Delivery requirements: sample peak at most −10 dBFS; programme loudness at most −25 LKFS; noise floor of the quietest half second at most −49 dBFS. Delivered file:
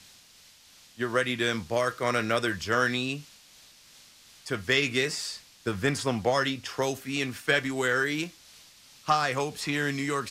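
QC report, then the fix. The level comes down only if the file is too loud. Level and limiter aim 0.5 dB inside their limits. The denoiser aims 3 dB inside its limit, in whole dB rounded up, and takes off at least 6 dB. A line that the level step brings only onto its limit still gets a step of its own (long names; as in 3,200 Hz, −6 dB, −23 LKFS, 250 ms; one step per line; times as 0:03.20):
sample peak −11.0 dBFS: in spec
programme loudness −28.0 LKFS: in spec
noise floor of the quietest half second −56 dBFS: in spec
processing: no processing needed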